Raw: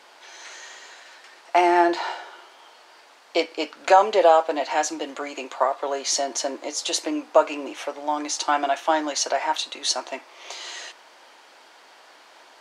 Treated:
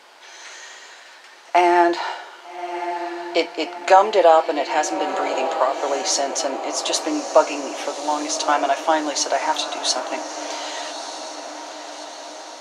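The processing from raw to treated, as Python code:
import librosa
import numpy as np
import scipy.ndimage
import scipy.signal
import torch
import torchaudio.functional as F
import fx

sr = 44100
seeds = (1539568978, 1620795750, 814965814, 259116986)

y = fx.echo_diffused(x, sr, ms=1220, feedback_pct=59, wet_db=-10.0)
y = fx.band_squash(y, sr, depth_pct=40, at=(4.78, 6.02))
y = y * 10.0 ** (2.5 / 20.0)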